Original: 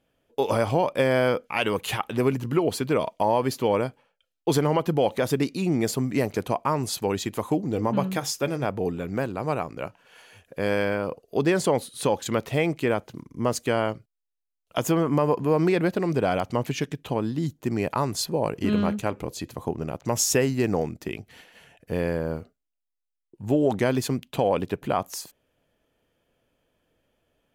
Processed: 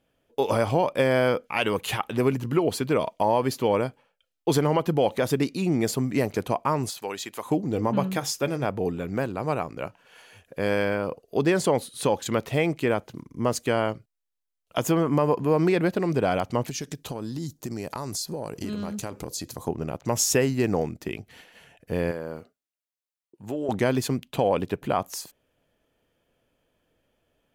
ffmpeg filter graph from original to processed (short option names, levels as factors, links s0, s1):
-filter_complex "[0:a]asettb=1/sr,asplit=3[s0][s1][s2];[s0]atrim=end=6.904[s3];[s1]atrim=start=6.9:end=7.46,asetpts=PTS-STARTPTS,afade=t=in:d=0.004:c=qsin,afade=t=out:st=0.556:d=0.004:c=qsin,deesser=0.6,highpass=f=980:p=1[s4];[s2]atrim=start=7.456[s5];[s3][s4]acrossfade=d=0.004:c1=hsin:c2=qsin[s6];[s6][s5]acrossfade=d=0.004:c1=qsin:c2=hsin,asettb=1/sr,asplit=3[s7][s8][s9];[s7]atrim=end=16.684[s10];[s8]atrim=start=16.68:end=19.68,asetpts=PTS-STARTPTS,afade=t=in:d=0.004:c=qsin,afade=t=out:st=2.996:d=0.004:c=qsin,highshelf=f=3800:t=q:w=1.5:g=8,acompressor=threshold=0.0398:ratio=6:attack=3.2:release=140:knee=1:detection=peak[s11];[s9]atrim=start=19.676[s12];[s10][s11]acrossfade=d=0.004:c1=hsin:c2=qsin[s13];[s13][s12]acrossfade=d=0.004:c1=qsin:c2=hsin,asettb=1/sr,asplit=3[s14][s15][s16];[s14]atrim=end=22.114[s17];[s15]atrim=start=22.11:end=23.69,asetpts=PTS-STARTPTS,afade=t=in:d=0.004:c=qsin,afade=t=out:st=1.576:d=0.004:c=qsin,highpass=f=300:p=1,acompressor=threshold=0.0316:ratio=2:attack=3.2:release=140:knee=1:detection=peak[s18];[s16]atrim=start=23.686[s19];[s17][s18]acrossfade=d=0.004:c1=hsin:c2=qsin[s20];[s20][s19]acrossfade=d=0.004:c1=qsin:c2=hsin"